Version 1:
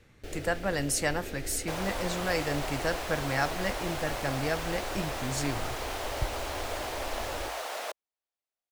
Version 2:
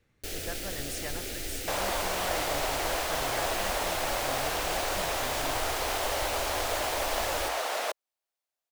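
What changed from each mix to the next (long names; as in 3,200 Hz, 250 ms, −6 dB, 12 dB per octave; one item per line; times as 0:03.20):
speech −11.5 dB
first sound: remove low-pass filter 1,200 Hz 6 dB per octave
second sound +5.0 dB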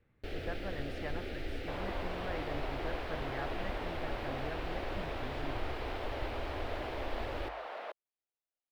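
second sound −9.0 dB
master: add high-frequency loss of the air 400 metres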